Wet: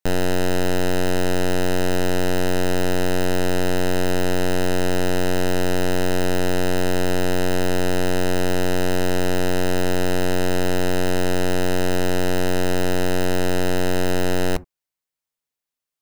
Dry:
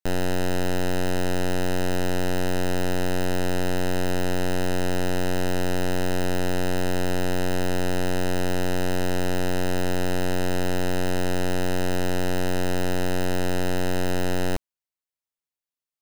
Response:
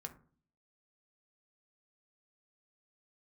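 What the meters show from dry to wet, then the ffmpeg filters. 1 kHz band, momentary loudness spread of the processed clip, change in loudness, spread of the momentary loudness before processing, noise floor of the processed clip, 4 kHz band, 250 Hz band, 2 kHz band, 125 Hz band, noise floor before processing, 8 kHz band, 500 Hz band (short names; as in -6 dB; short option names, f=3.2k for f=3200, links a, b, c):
+3.5 dB, 0 LU, +4.0 dB, 0 LU, under -85 dBFS, +4.5 dB, +4.0 dB, +4.0 dB, +2.5 dB, under -85 dBFS, +4.5 dB, +5.0 dB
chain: -filter_complex "[0:a]asplit=2[a][b];[1:a]atrim=start_sample=2205,atrim=end_sample=3528[c];[b][c]afir=irnorm=-1:irlink=0,volume=-6dB[d];[a][d]amix=inputs=2:normalize=0,volume=2.5dB"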